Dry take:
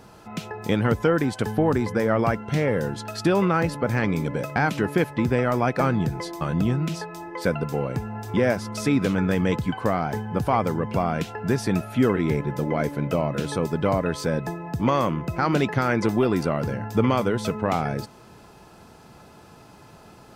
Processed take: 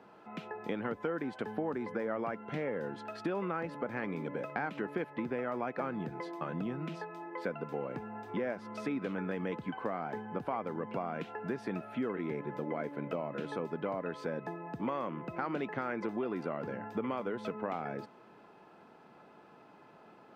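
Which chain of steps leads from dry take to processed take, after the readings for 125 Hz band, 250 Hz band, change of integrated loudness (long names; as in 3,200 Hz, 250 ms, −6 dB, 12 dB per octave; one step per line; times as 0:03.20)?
−19.5 dB, −14.0 dB, −13.5 dB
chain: three-way crossover with the lows and the highs turned down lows −24 dB, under 180 Hz, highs −20 dB, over 3,100 Hz
downward compressor 3 to 1, threshold −26 dBFS, peak gain reduction 8 dB
level −7 dB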